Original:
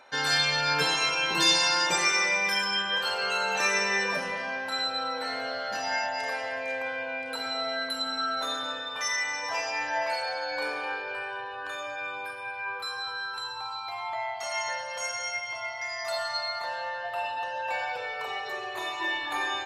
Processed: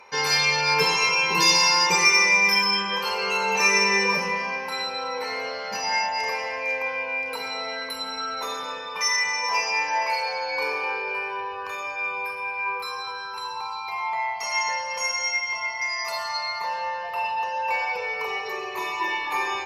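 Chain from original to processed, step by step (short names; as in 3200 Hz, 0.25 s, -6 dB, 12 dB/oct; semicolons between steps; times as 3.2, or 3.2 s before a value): ripple EQ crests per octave 0.82, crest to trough 13 dB; in parallel at -8 dB: soft clip -18 dBFS, distortion -15 dB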